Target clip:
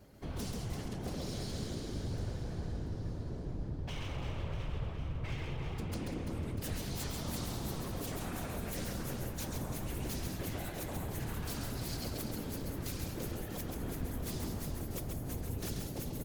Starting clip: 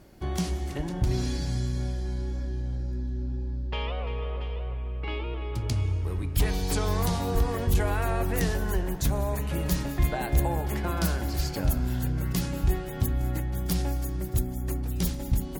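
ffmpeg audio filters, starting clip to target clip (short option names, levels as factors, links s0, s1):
-filter_complex "[0:a]acrossover=split=170|3000[s0][s1][s2];[s1]acompressor=threshold=0.0126:ratio=6[s3];[s0][s3][s2]amix=inputs=3:normalize=0,aeval=exprs='0.0335*(abs(mod(val(0)/0.0335+3,4)-2)-1)':c=same,afftfilt=real='hypot(re,im)*cos(2*PI*random(0))':imag='hypot(re,im)*sin(2*PI*random(1))':win_size=512:overlap=0.75,aecho=1:1:130|325|617.5|1056|1714:0.631|0.398|0.251|0.158|0.1,asetrate=42336,aresample=44100"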